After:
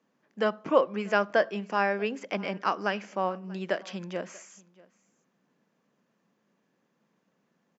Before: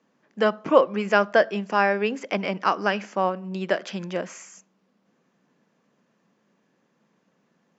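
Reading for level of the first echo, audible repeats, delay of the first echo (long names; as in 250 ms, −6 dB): −23.5 dB, 1, 637 ms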